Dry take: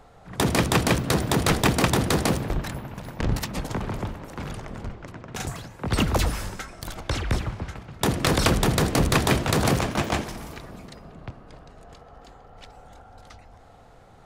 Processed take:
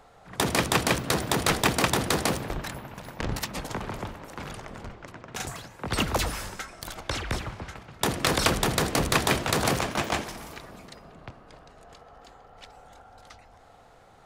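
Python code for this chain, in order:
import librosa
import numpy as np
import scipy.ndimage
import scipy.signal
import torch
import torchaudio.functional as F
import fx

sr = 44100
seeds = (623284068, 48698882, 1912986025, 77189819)

y = fx.low_shelf(x, sr, hz=350.0, db=-8.0)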